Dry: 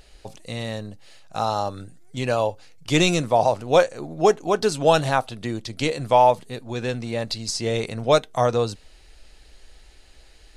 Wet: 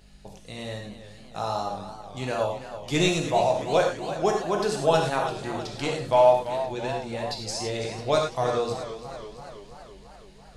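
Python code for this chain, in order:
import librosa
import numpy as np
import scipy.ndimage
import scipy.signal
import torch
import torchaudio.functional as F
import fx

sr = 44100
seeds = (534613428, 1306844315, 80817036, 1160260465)

y = fx.add_hum(x, sr, base_hz=50, snr_db=24)
y = fx.rev_gated(y, sr, seeds[0], gate_ms=130, shape='flat', drr_db=0.5)
y = fx.echo_warbled(y, sr, ms=332, feedback_pct=64, rate_hz=2.8, cents=99, wet_db=-12.0)
y = y * 10.0 ** (-7.0 / 20.0)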